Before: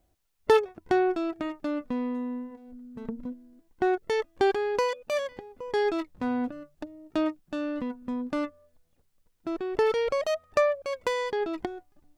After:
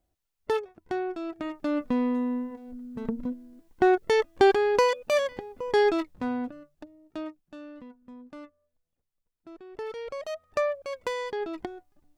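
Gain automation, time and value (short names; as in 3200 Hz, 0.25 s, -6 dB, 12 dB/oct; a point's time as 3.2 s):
1.09 s -7 dB
1.83 s +4.5 dB
5.81 s +4.5 dB
6.7 s -6 dB
8 s -14.5 dB
9.65 s -14.5 dB
10.66 s -3 dB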